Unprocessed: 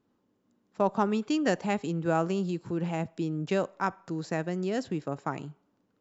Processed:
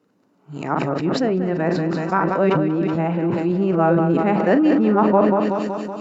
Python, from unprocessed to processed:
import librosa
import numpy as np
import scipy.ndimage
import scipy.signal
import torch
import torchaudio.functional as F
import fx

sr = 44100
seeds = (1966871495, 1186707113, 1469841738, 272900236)

y = np.flip(x).copy()
y = scipy.signal.sosfilt(scipy.signal.butter(2, 170.0, 'highpass', fs=sr, output='sos'), y)
y = fx.doubler(y, sr, ms=42.0, db=-13.5)
y = fx.echo_feedback(y, sr, ms=188, feedback_pct=58, wet_db=-10.5)
y = fx.env_lowpass_down(y, sr, base_hz=1900.0, full_db=-27.5)
y = fx.low_shelf(y, sr, hz=340.0, db=3.0)
y = fx.notch(y, sr, hz=3300.0, q=11.0)
y = fx.sustainer(y, sr, db_per_s=21.0)
y = y * librosa.db_to_amplitude(8.5)